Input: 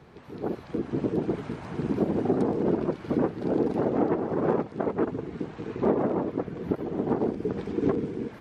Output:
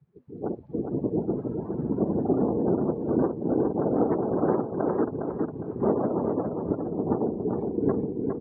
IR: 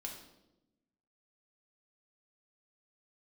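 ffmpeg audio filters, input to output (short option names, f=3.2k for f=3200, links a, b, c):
-af "afftdn=nr=29:nf=-37,highshelf=f=3.6k:g=-7,aecho=1:1:409|818|1227|1636:0.562|0.191|0.065|0.0221"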